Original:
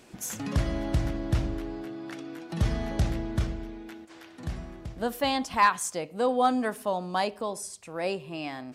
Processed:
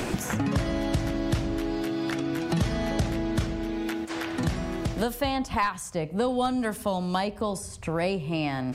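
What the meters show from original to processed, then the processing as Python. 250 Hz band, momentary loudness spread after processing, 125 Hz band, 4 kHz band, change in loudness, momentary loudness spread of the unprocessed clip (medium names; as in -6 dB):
+5.5 dB, 4 LU, +2.0 dB, +2.0 dB, +1.0 dB, 16 LU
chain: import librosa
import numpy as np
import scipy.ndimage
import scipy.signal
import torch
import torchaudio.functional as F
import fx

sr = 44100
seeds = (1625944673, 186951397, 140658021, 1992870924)

y = fx.band_squash(x, sr, depth_pct=100)
y = y * librosa.db_to_amplitude(1.5)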